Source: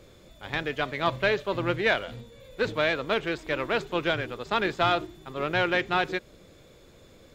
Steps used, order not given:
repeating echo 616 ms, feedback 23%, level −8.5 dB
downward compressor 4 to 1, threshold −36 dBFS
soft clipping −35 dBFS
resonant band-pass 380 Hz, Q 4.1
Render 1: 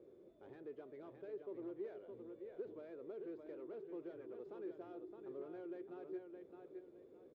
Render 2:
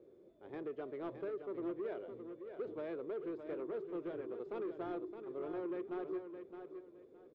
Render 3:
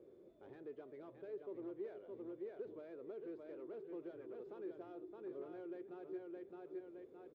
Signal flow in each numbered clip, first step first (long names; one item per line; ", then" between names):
downward compressor, then repeating echo, then soft clipping, then resonant band-pass
resonant band-pass, then downward compressor, then soft clipping, then repeating echo
repeating echo, then downward compressor, then soft clipping, then resonant band-pass